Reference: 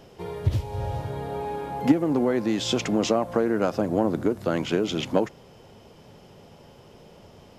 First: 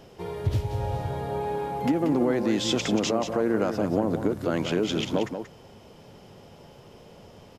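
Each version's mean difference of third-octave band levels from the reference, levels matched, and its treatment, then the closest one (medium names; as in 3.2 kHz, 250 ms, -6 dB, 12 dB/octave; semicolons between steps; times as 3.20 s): 2.0 dB: peak limiter -15 dBFS, peak gain reduction 7.5 dB; on a send: delay 183 ms -8 dB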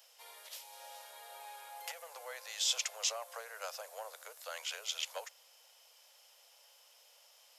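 17.0 dB: steep high-pass 490 Hz 72 dB/octave; differentiator; trim +2 dB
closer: first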